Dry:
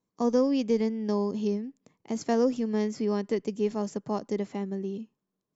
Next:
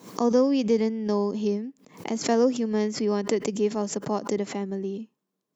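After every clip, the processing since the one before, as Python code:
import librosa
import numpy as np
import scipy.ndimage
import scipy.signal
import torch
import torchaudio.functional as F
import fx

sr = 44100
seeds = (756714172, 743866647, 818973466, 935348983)

y = scipy.signal.sosfilt(scipy.signal.butter(2, 180.0, 'highpass', fs=sr, output='sos'), x)
y = fx.pre_swell(y, sr, db_per_s=140.0)
y = y * 10.0 ** (3.5 / 20.0)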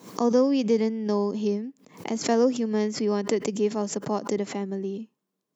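y = scipy.signal.sosfilt(scipy.signal.butter(2, 51.0, 'highpass', fs=sr, output='sos'), x)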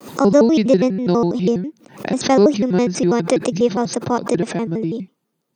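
y = fx.notch(x, sr, hz=6600.0, q=5.4)
y = fx.vibrato_shape(y, sr, shape='square', rate_hz=6.1, depth_cents=250.0)
y = y * 10.0 ** (8.5 / 20.0)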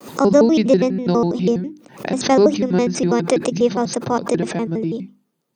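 y = fx.hum_notches(x, sr, base_hz=50, count=7)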